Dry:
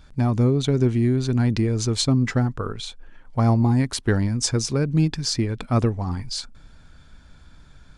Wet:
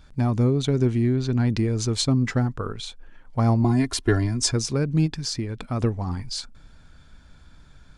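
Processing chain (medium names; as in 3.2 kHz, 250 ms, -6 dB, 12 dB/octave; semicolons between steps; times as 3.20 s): 1.02–1.47 s: low-pass 6.2 kHz 12 dB/octave; 3.64–4.52 s: comb 2.9 ms, depth 89%; 5.06–5.80 s: compression 2:1, threshold -26 dBFS, peak gain reduction 6.5 dB; trim -1.5 dB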